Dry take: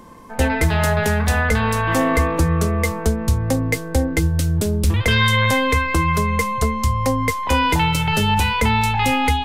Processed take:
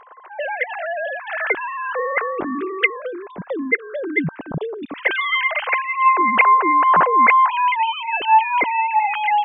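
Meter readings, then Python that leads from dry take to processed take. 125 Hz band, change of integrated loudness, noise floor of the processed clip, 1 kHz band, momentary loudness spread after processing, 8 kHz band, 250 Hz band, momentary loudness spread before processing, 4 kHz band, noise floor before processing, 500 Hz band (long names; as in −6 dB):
−20.0 dB, +0.5 dB, −41 dBFS, +5.5 dB, 15 LU, below −40 dB, −8.0 dB, 4 LU, −7.0 dB, −29 dBFS, −3.0 dB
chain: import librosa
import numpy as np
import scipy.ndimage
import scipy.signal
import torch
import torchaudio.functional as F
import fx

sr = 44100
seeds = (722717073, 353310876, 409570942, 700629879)

y = fx.sine_speech(x, sr)
y = F.gain(torch.from_numpy(y), -1.0).numpy()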